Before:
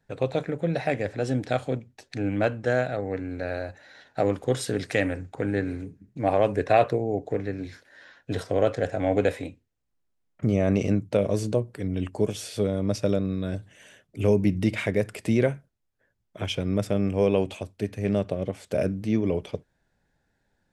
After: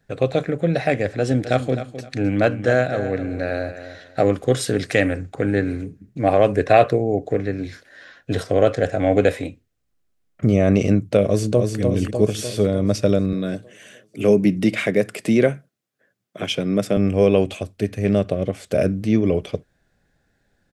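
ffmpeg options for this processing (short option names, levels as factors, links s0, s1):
-filter_complex "[0:a]asettb=1/sr,asplit=3[s0][s1][s2];[s0]atrim=end=1.044[s3];[s1]atrim=start=1.04:end=4.25,asetpts=PTS-STARTPTS,afade=t=in:d=0.004:c=qsin,afade=t=out:st=3.206:d=0.004:c=qsin,aecho=1:1:260|520|780:0.251|0.0603|0.0145,atrim=end_sample=141561[s4];[s2]atrim=start=4.246[s5];[s3][s4]acrossfade=d=0.004:c1=hsin:c2=qsin[s6];[s6][s5]acrossfade=d=0.004:c1=qsin:c2=hsin,asplit=2[s7][s8];[s8]afade=t=in:st=11.26:d=0.01,afade=t=out:st=11.8:d=0.01,aecho=0:1:300|600|900|1200|1500|1800|2100|2400|2700:0.630957|0.378574|0.227145|0.136287|0.0817721|0.0490632|0.0294379|0.0176628|0.0105977[s9];[s7][s9]amix=inputs=2:normalize=0,asettb=1/sr,asplit=3[s10][s11][s12];[s10]atrim=end=13.334[s13];[s11]atrim=start=13.33:end=16.97,asetpts=PTS-STARTPTS,afade=t=in:d=0.004:c=qsin,afade=t=out:st=3.636:d=0.004:c=qsin,highpass=f=140:w=0.5412,highpass=f=140:w=1.3066[s14];[s12]atrim=start=16.966[s15];[s13][s14]acrossfade=d=0.004:c1=hsin:c2=qsin[s16];[s16][s15]acrossfade=d=0.004:c1=qsin:c2=hsin,bandreject=f=910:w=5.2,volume=2.11"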